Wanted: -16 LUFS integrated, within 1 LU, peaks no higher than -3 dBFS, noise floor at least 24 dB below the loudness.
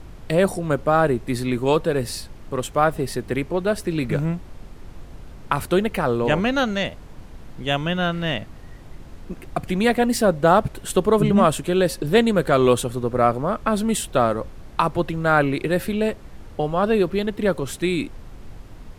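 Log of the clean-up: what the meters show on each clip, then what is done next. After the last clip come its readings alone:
noise floor -41 dBFS; noise floor target -46 dBFS; loudness -21.5 LUFS; peak -4.0 dBFS; loudness target -16.0 LUFS
-> noise print and reduce 6 dB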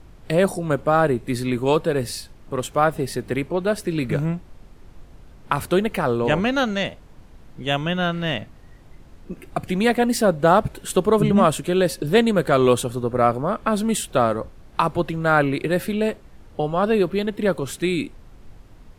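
noise floor -46 dBFS; loudness -21.5 LUFS; peak -4.0 dBFS; loudness target -16.0 LUFS
-> gain +5.5 dB; limiter -3 dBFS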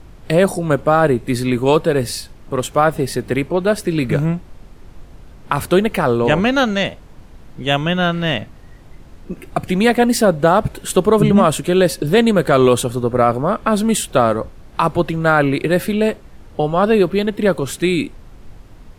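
loudness -16.5 LUFS; peak -3.0 dBFS; noise floor -41 dBFS

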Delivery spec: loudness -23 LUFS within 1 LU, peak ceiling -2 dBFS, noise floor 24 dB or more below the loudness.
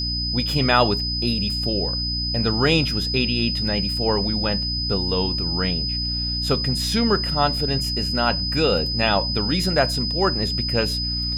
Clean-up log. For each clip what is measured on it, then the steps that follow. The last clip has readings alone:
hum 60 Hz; harmonics up to 300 Hz; hum level -26 dBFS; steady tone 5000 Hz; tone level -24 dBFS; loudness -21.0 LUFS; peak -1.5 dBFS; loudness target -23.0 LUFS
-> notches 60/120/180/240/300 Hz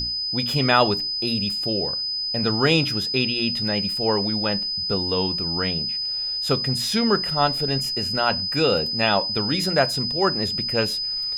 hum none; steady tone 5000 Hz; tone level -24 dBFS
-> notch 5000 Hz, Q 30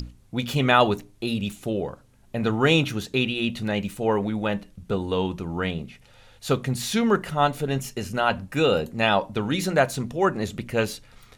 steady tone none; loudness -24.5 LUFS; peak -2.5 dBFS; loudness target -23.0 LUFS
-> gain +1.5 dB; limiter -2 dBFS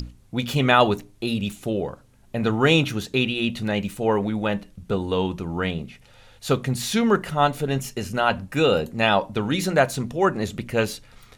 loudness -23.0 LUFS; peak -2.0 dBFS; noise floor -53 dBFS

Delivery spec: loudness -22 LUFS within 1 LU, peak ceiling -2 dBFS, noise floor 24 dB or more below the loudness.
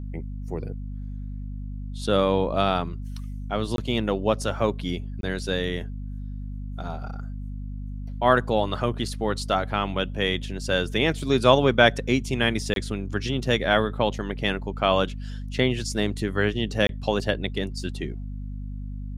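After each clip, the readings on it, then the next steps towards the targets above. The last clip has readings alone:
dropouts 4; longest dropout 22 ms; hum 50 Hz; harmonics up to 250 Hz; hum level -31 dBFS; loudness -25.0 LUFS; peak -1.5 dBFS; loudness target -22.0 LUFS
-> interpolate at 3.76/5.21/12.74/16.87, 22 ms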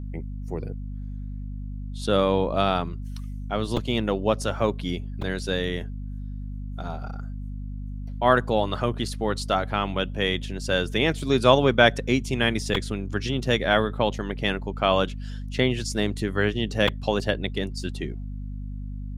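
dropouts 0; hum 50 Hz; harmonics up to 250 Hz; hum level -31 dBFS
-> notches 50/100/150/200/250 Hz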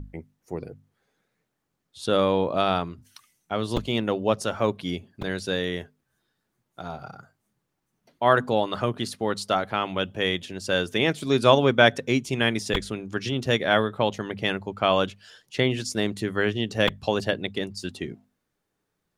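hum none; loudness -25.0 LUFS; peak -1.5 dBFS; loudness target -22.0 LUFS
-> gain +3 dB; limiter -2 dBFS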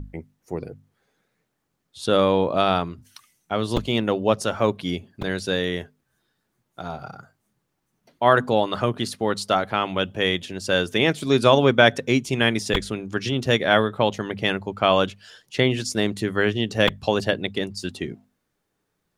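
loudness -22.0 LUFS; peak -2.0 dBFS; noise floor -76 dBFS

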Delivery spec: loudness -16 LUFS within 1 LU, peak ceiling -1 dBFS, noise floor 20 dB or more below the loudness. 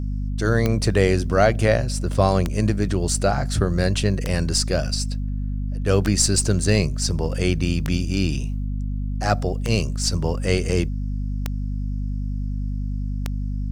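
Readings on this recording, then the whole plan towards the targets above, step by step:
clicks 8; hum 50 Hz; harmonics up to 250 Hz; hum level -23 dBFS; loudness -22.5 LUFS; peak -3.0 dBFS; loudness target -16.0 LUFS
-> de-click; de-hum 50 Hz, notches 5; gain +6.5 dB; limiter -1 dBFS

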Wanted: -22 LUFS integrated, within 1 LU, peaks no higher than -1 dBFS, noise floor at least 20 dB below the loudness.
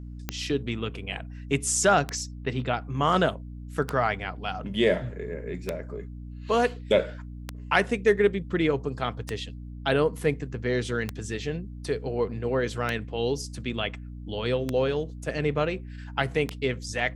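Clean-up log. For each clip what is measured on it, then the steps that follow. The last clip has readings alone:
clicks 10; hum 60 Hz; harmonics up to 300 Hz; hum level -37 dBFS; loudness -27.5 LUFS; peak -6.0 dBFS; loudness target -22.0 LUFS
-> de-click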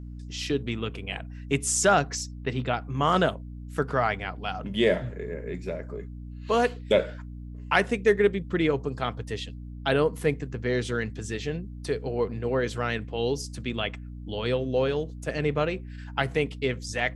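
clicks 0; hum 60 Hz; harmonics up to 300 Hz; hum level -37 dBFS
-> notches 60/120/180/240/300 Hz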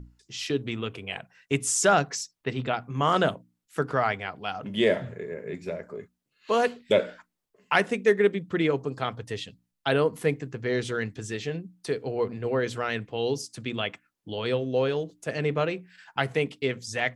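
hum none; loudness -28.0 LUFS; peak -6.0 dBFS; loudness target -22.0 LUFS
-> gain +6 dB; limiter -1 dBFS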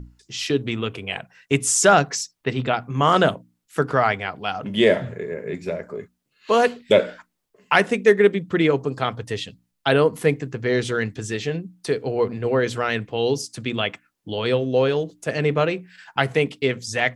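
loudness -22.0 LUFS; peak -1.0 dBFS; noise floor -75 dBFS

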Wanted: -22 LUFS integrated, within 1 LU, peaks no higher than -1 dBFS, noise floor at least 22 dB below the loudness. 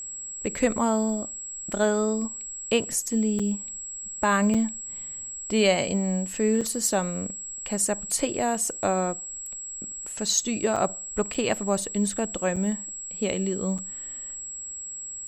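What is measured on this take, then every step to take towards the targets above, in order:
dropouts 7; longest dropout 5.6 ms; steady tone 7700 Hz; tone level -34 dBFS; loudness -26.5 LUFS; peak -9.0 dBFS; loudness target -22.0 LUFS
-> interpolate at 3.39/4.54/6.61/10.76/11.34/12.56/13.78, 5.6 ms; notch 7700 Hz, Q 30; gain +4.5 dB

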